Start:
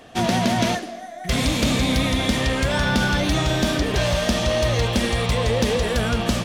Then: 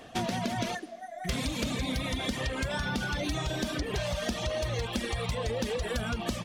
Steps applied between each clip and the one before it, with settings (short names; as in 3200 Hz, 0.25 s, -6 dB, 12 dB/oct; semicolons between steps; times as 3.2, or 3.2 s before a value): reverb removal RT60 1.1 s; compressor, threshold -26 dBFS, peak gain reduction 9 dB; gain -2.5 dB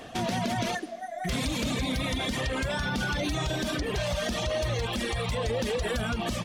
limiter -26.5 dBFS, peak gain reduction 8 dB; gain +5 dB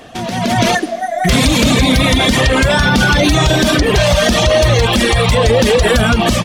AGC gain up to 12 dB; gain +6 dB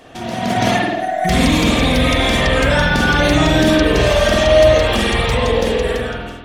ending faded out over 1.22 s; spring tank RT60 1 s, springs 48 ms, chirp 55 ms, DRR -3.5 dB; gain -7 dB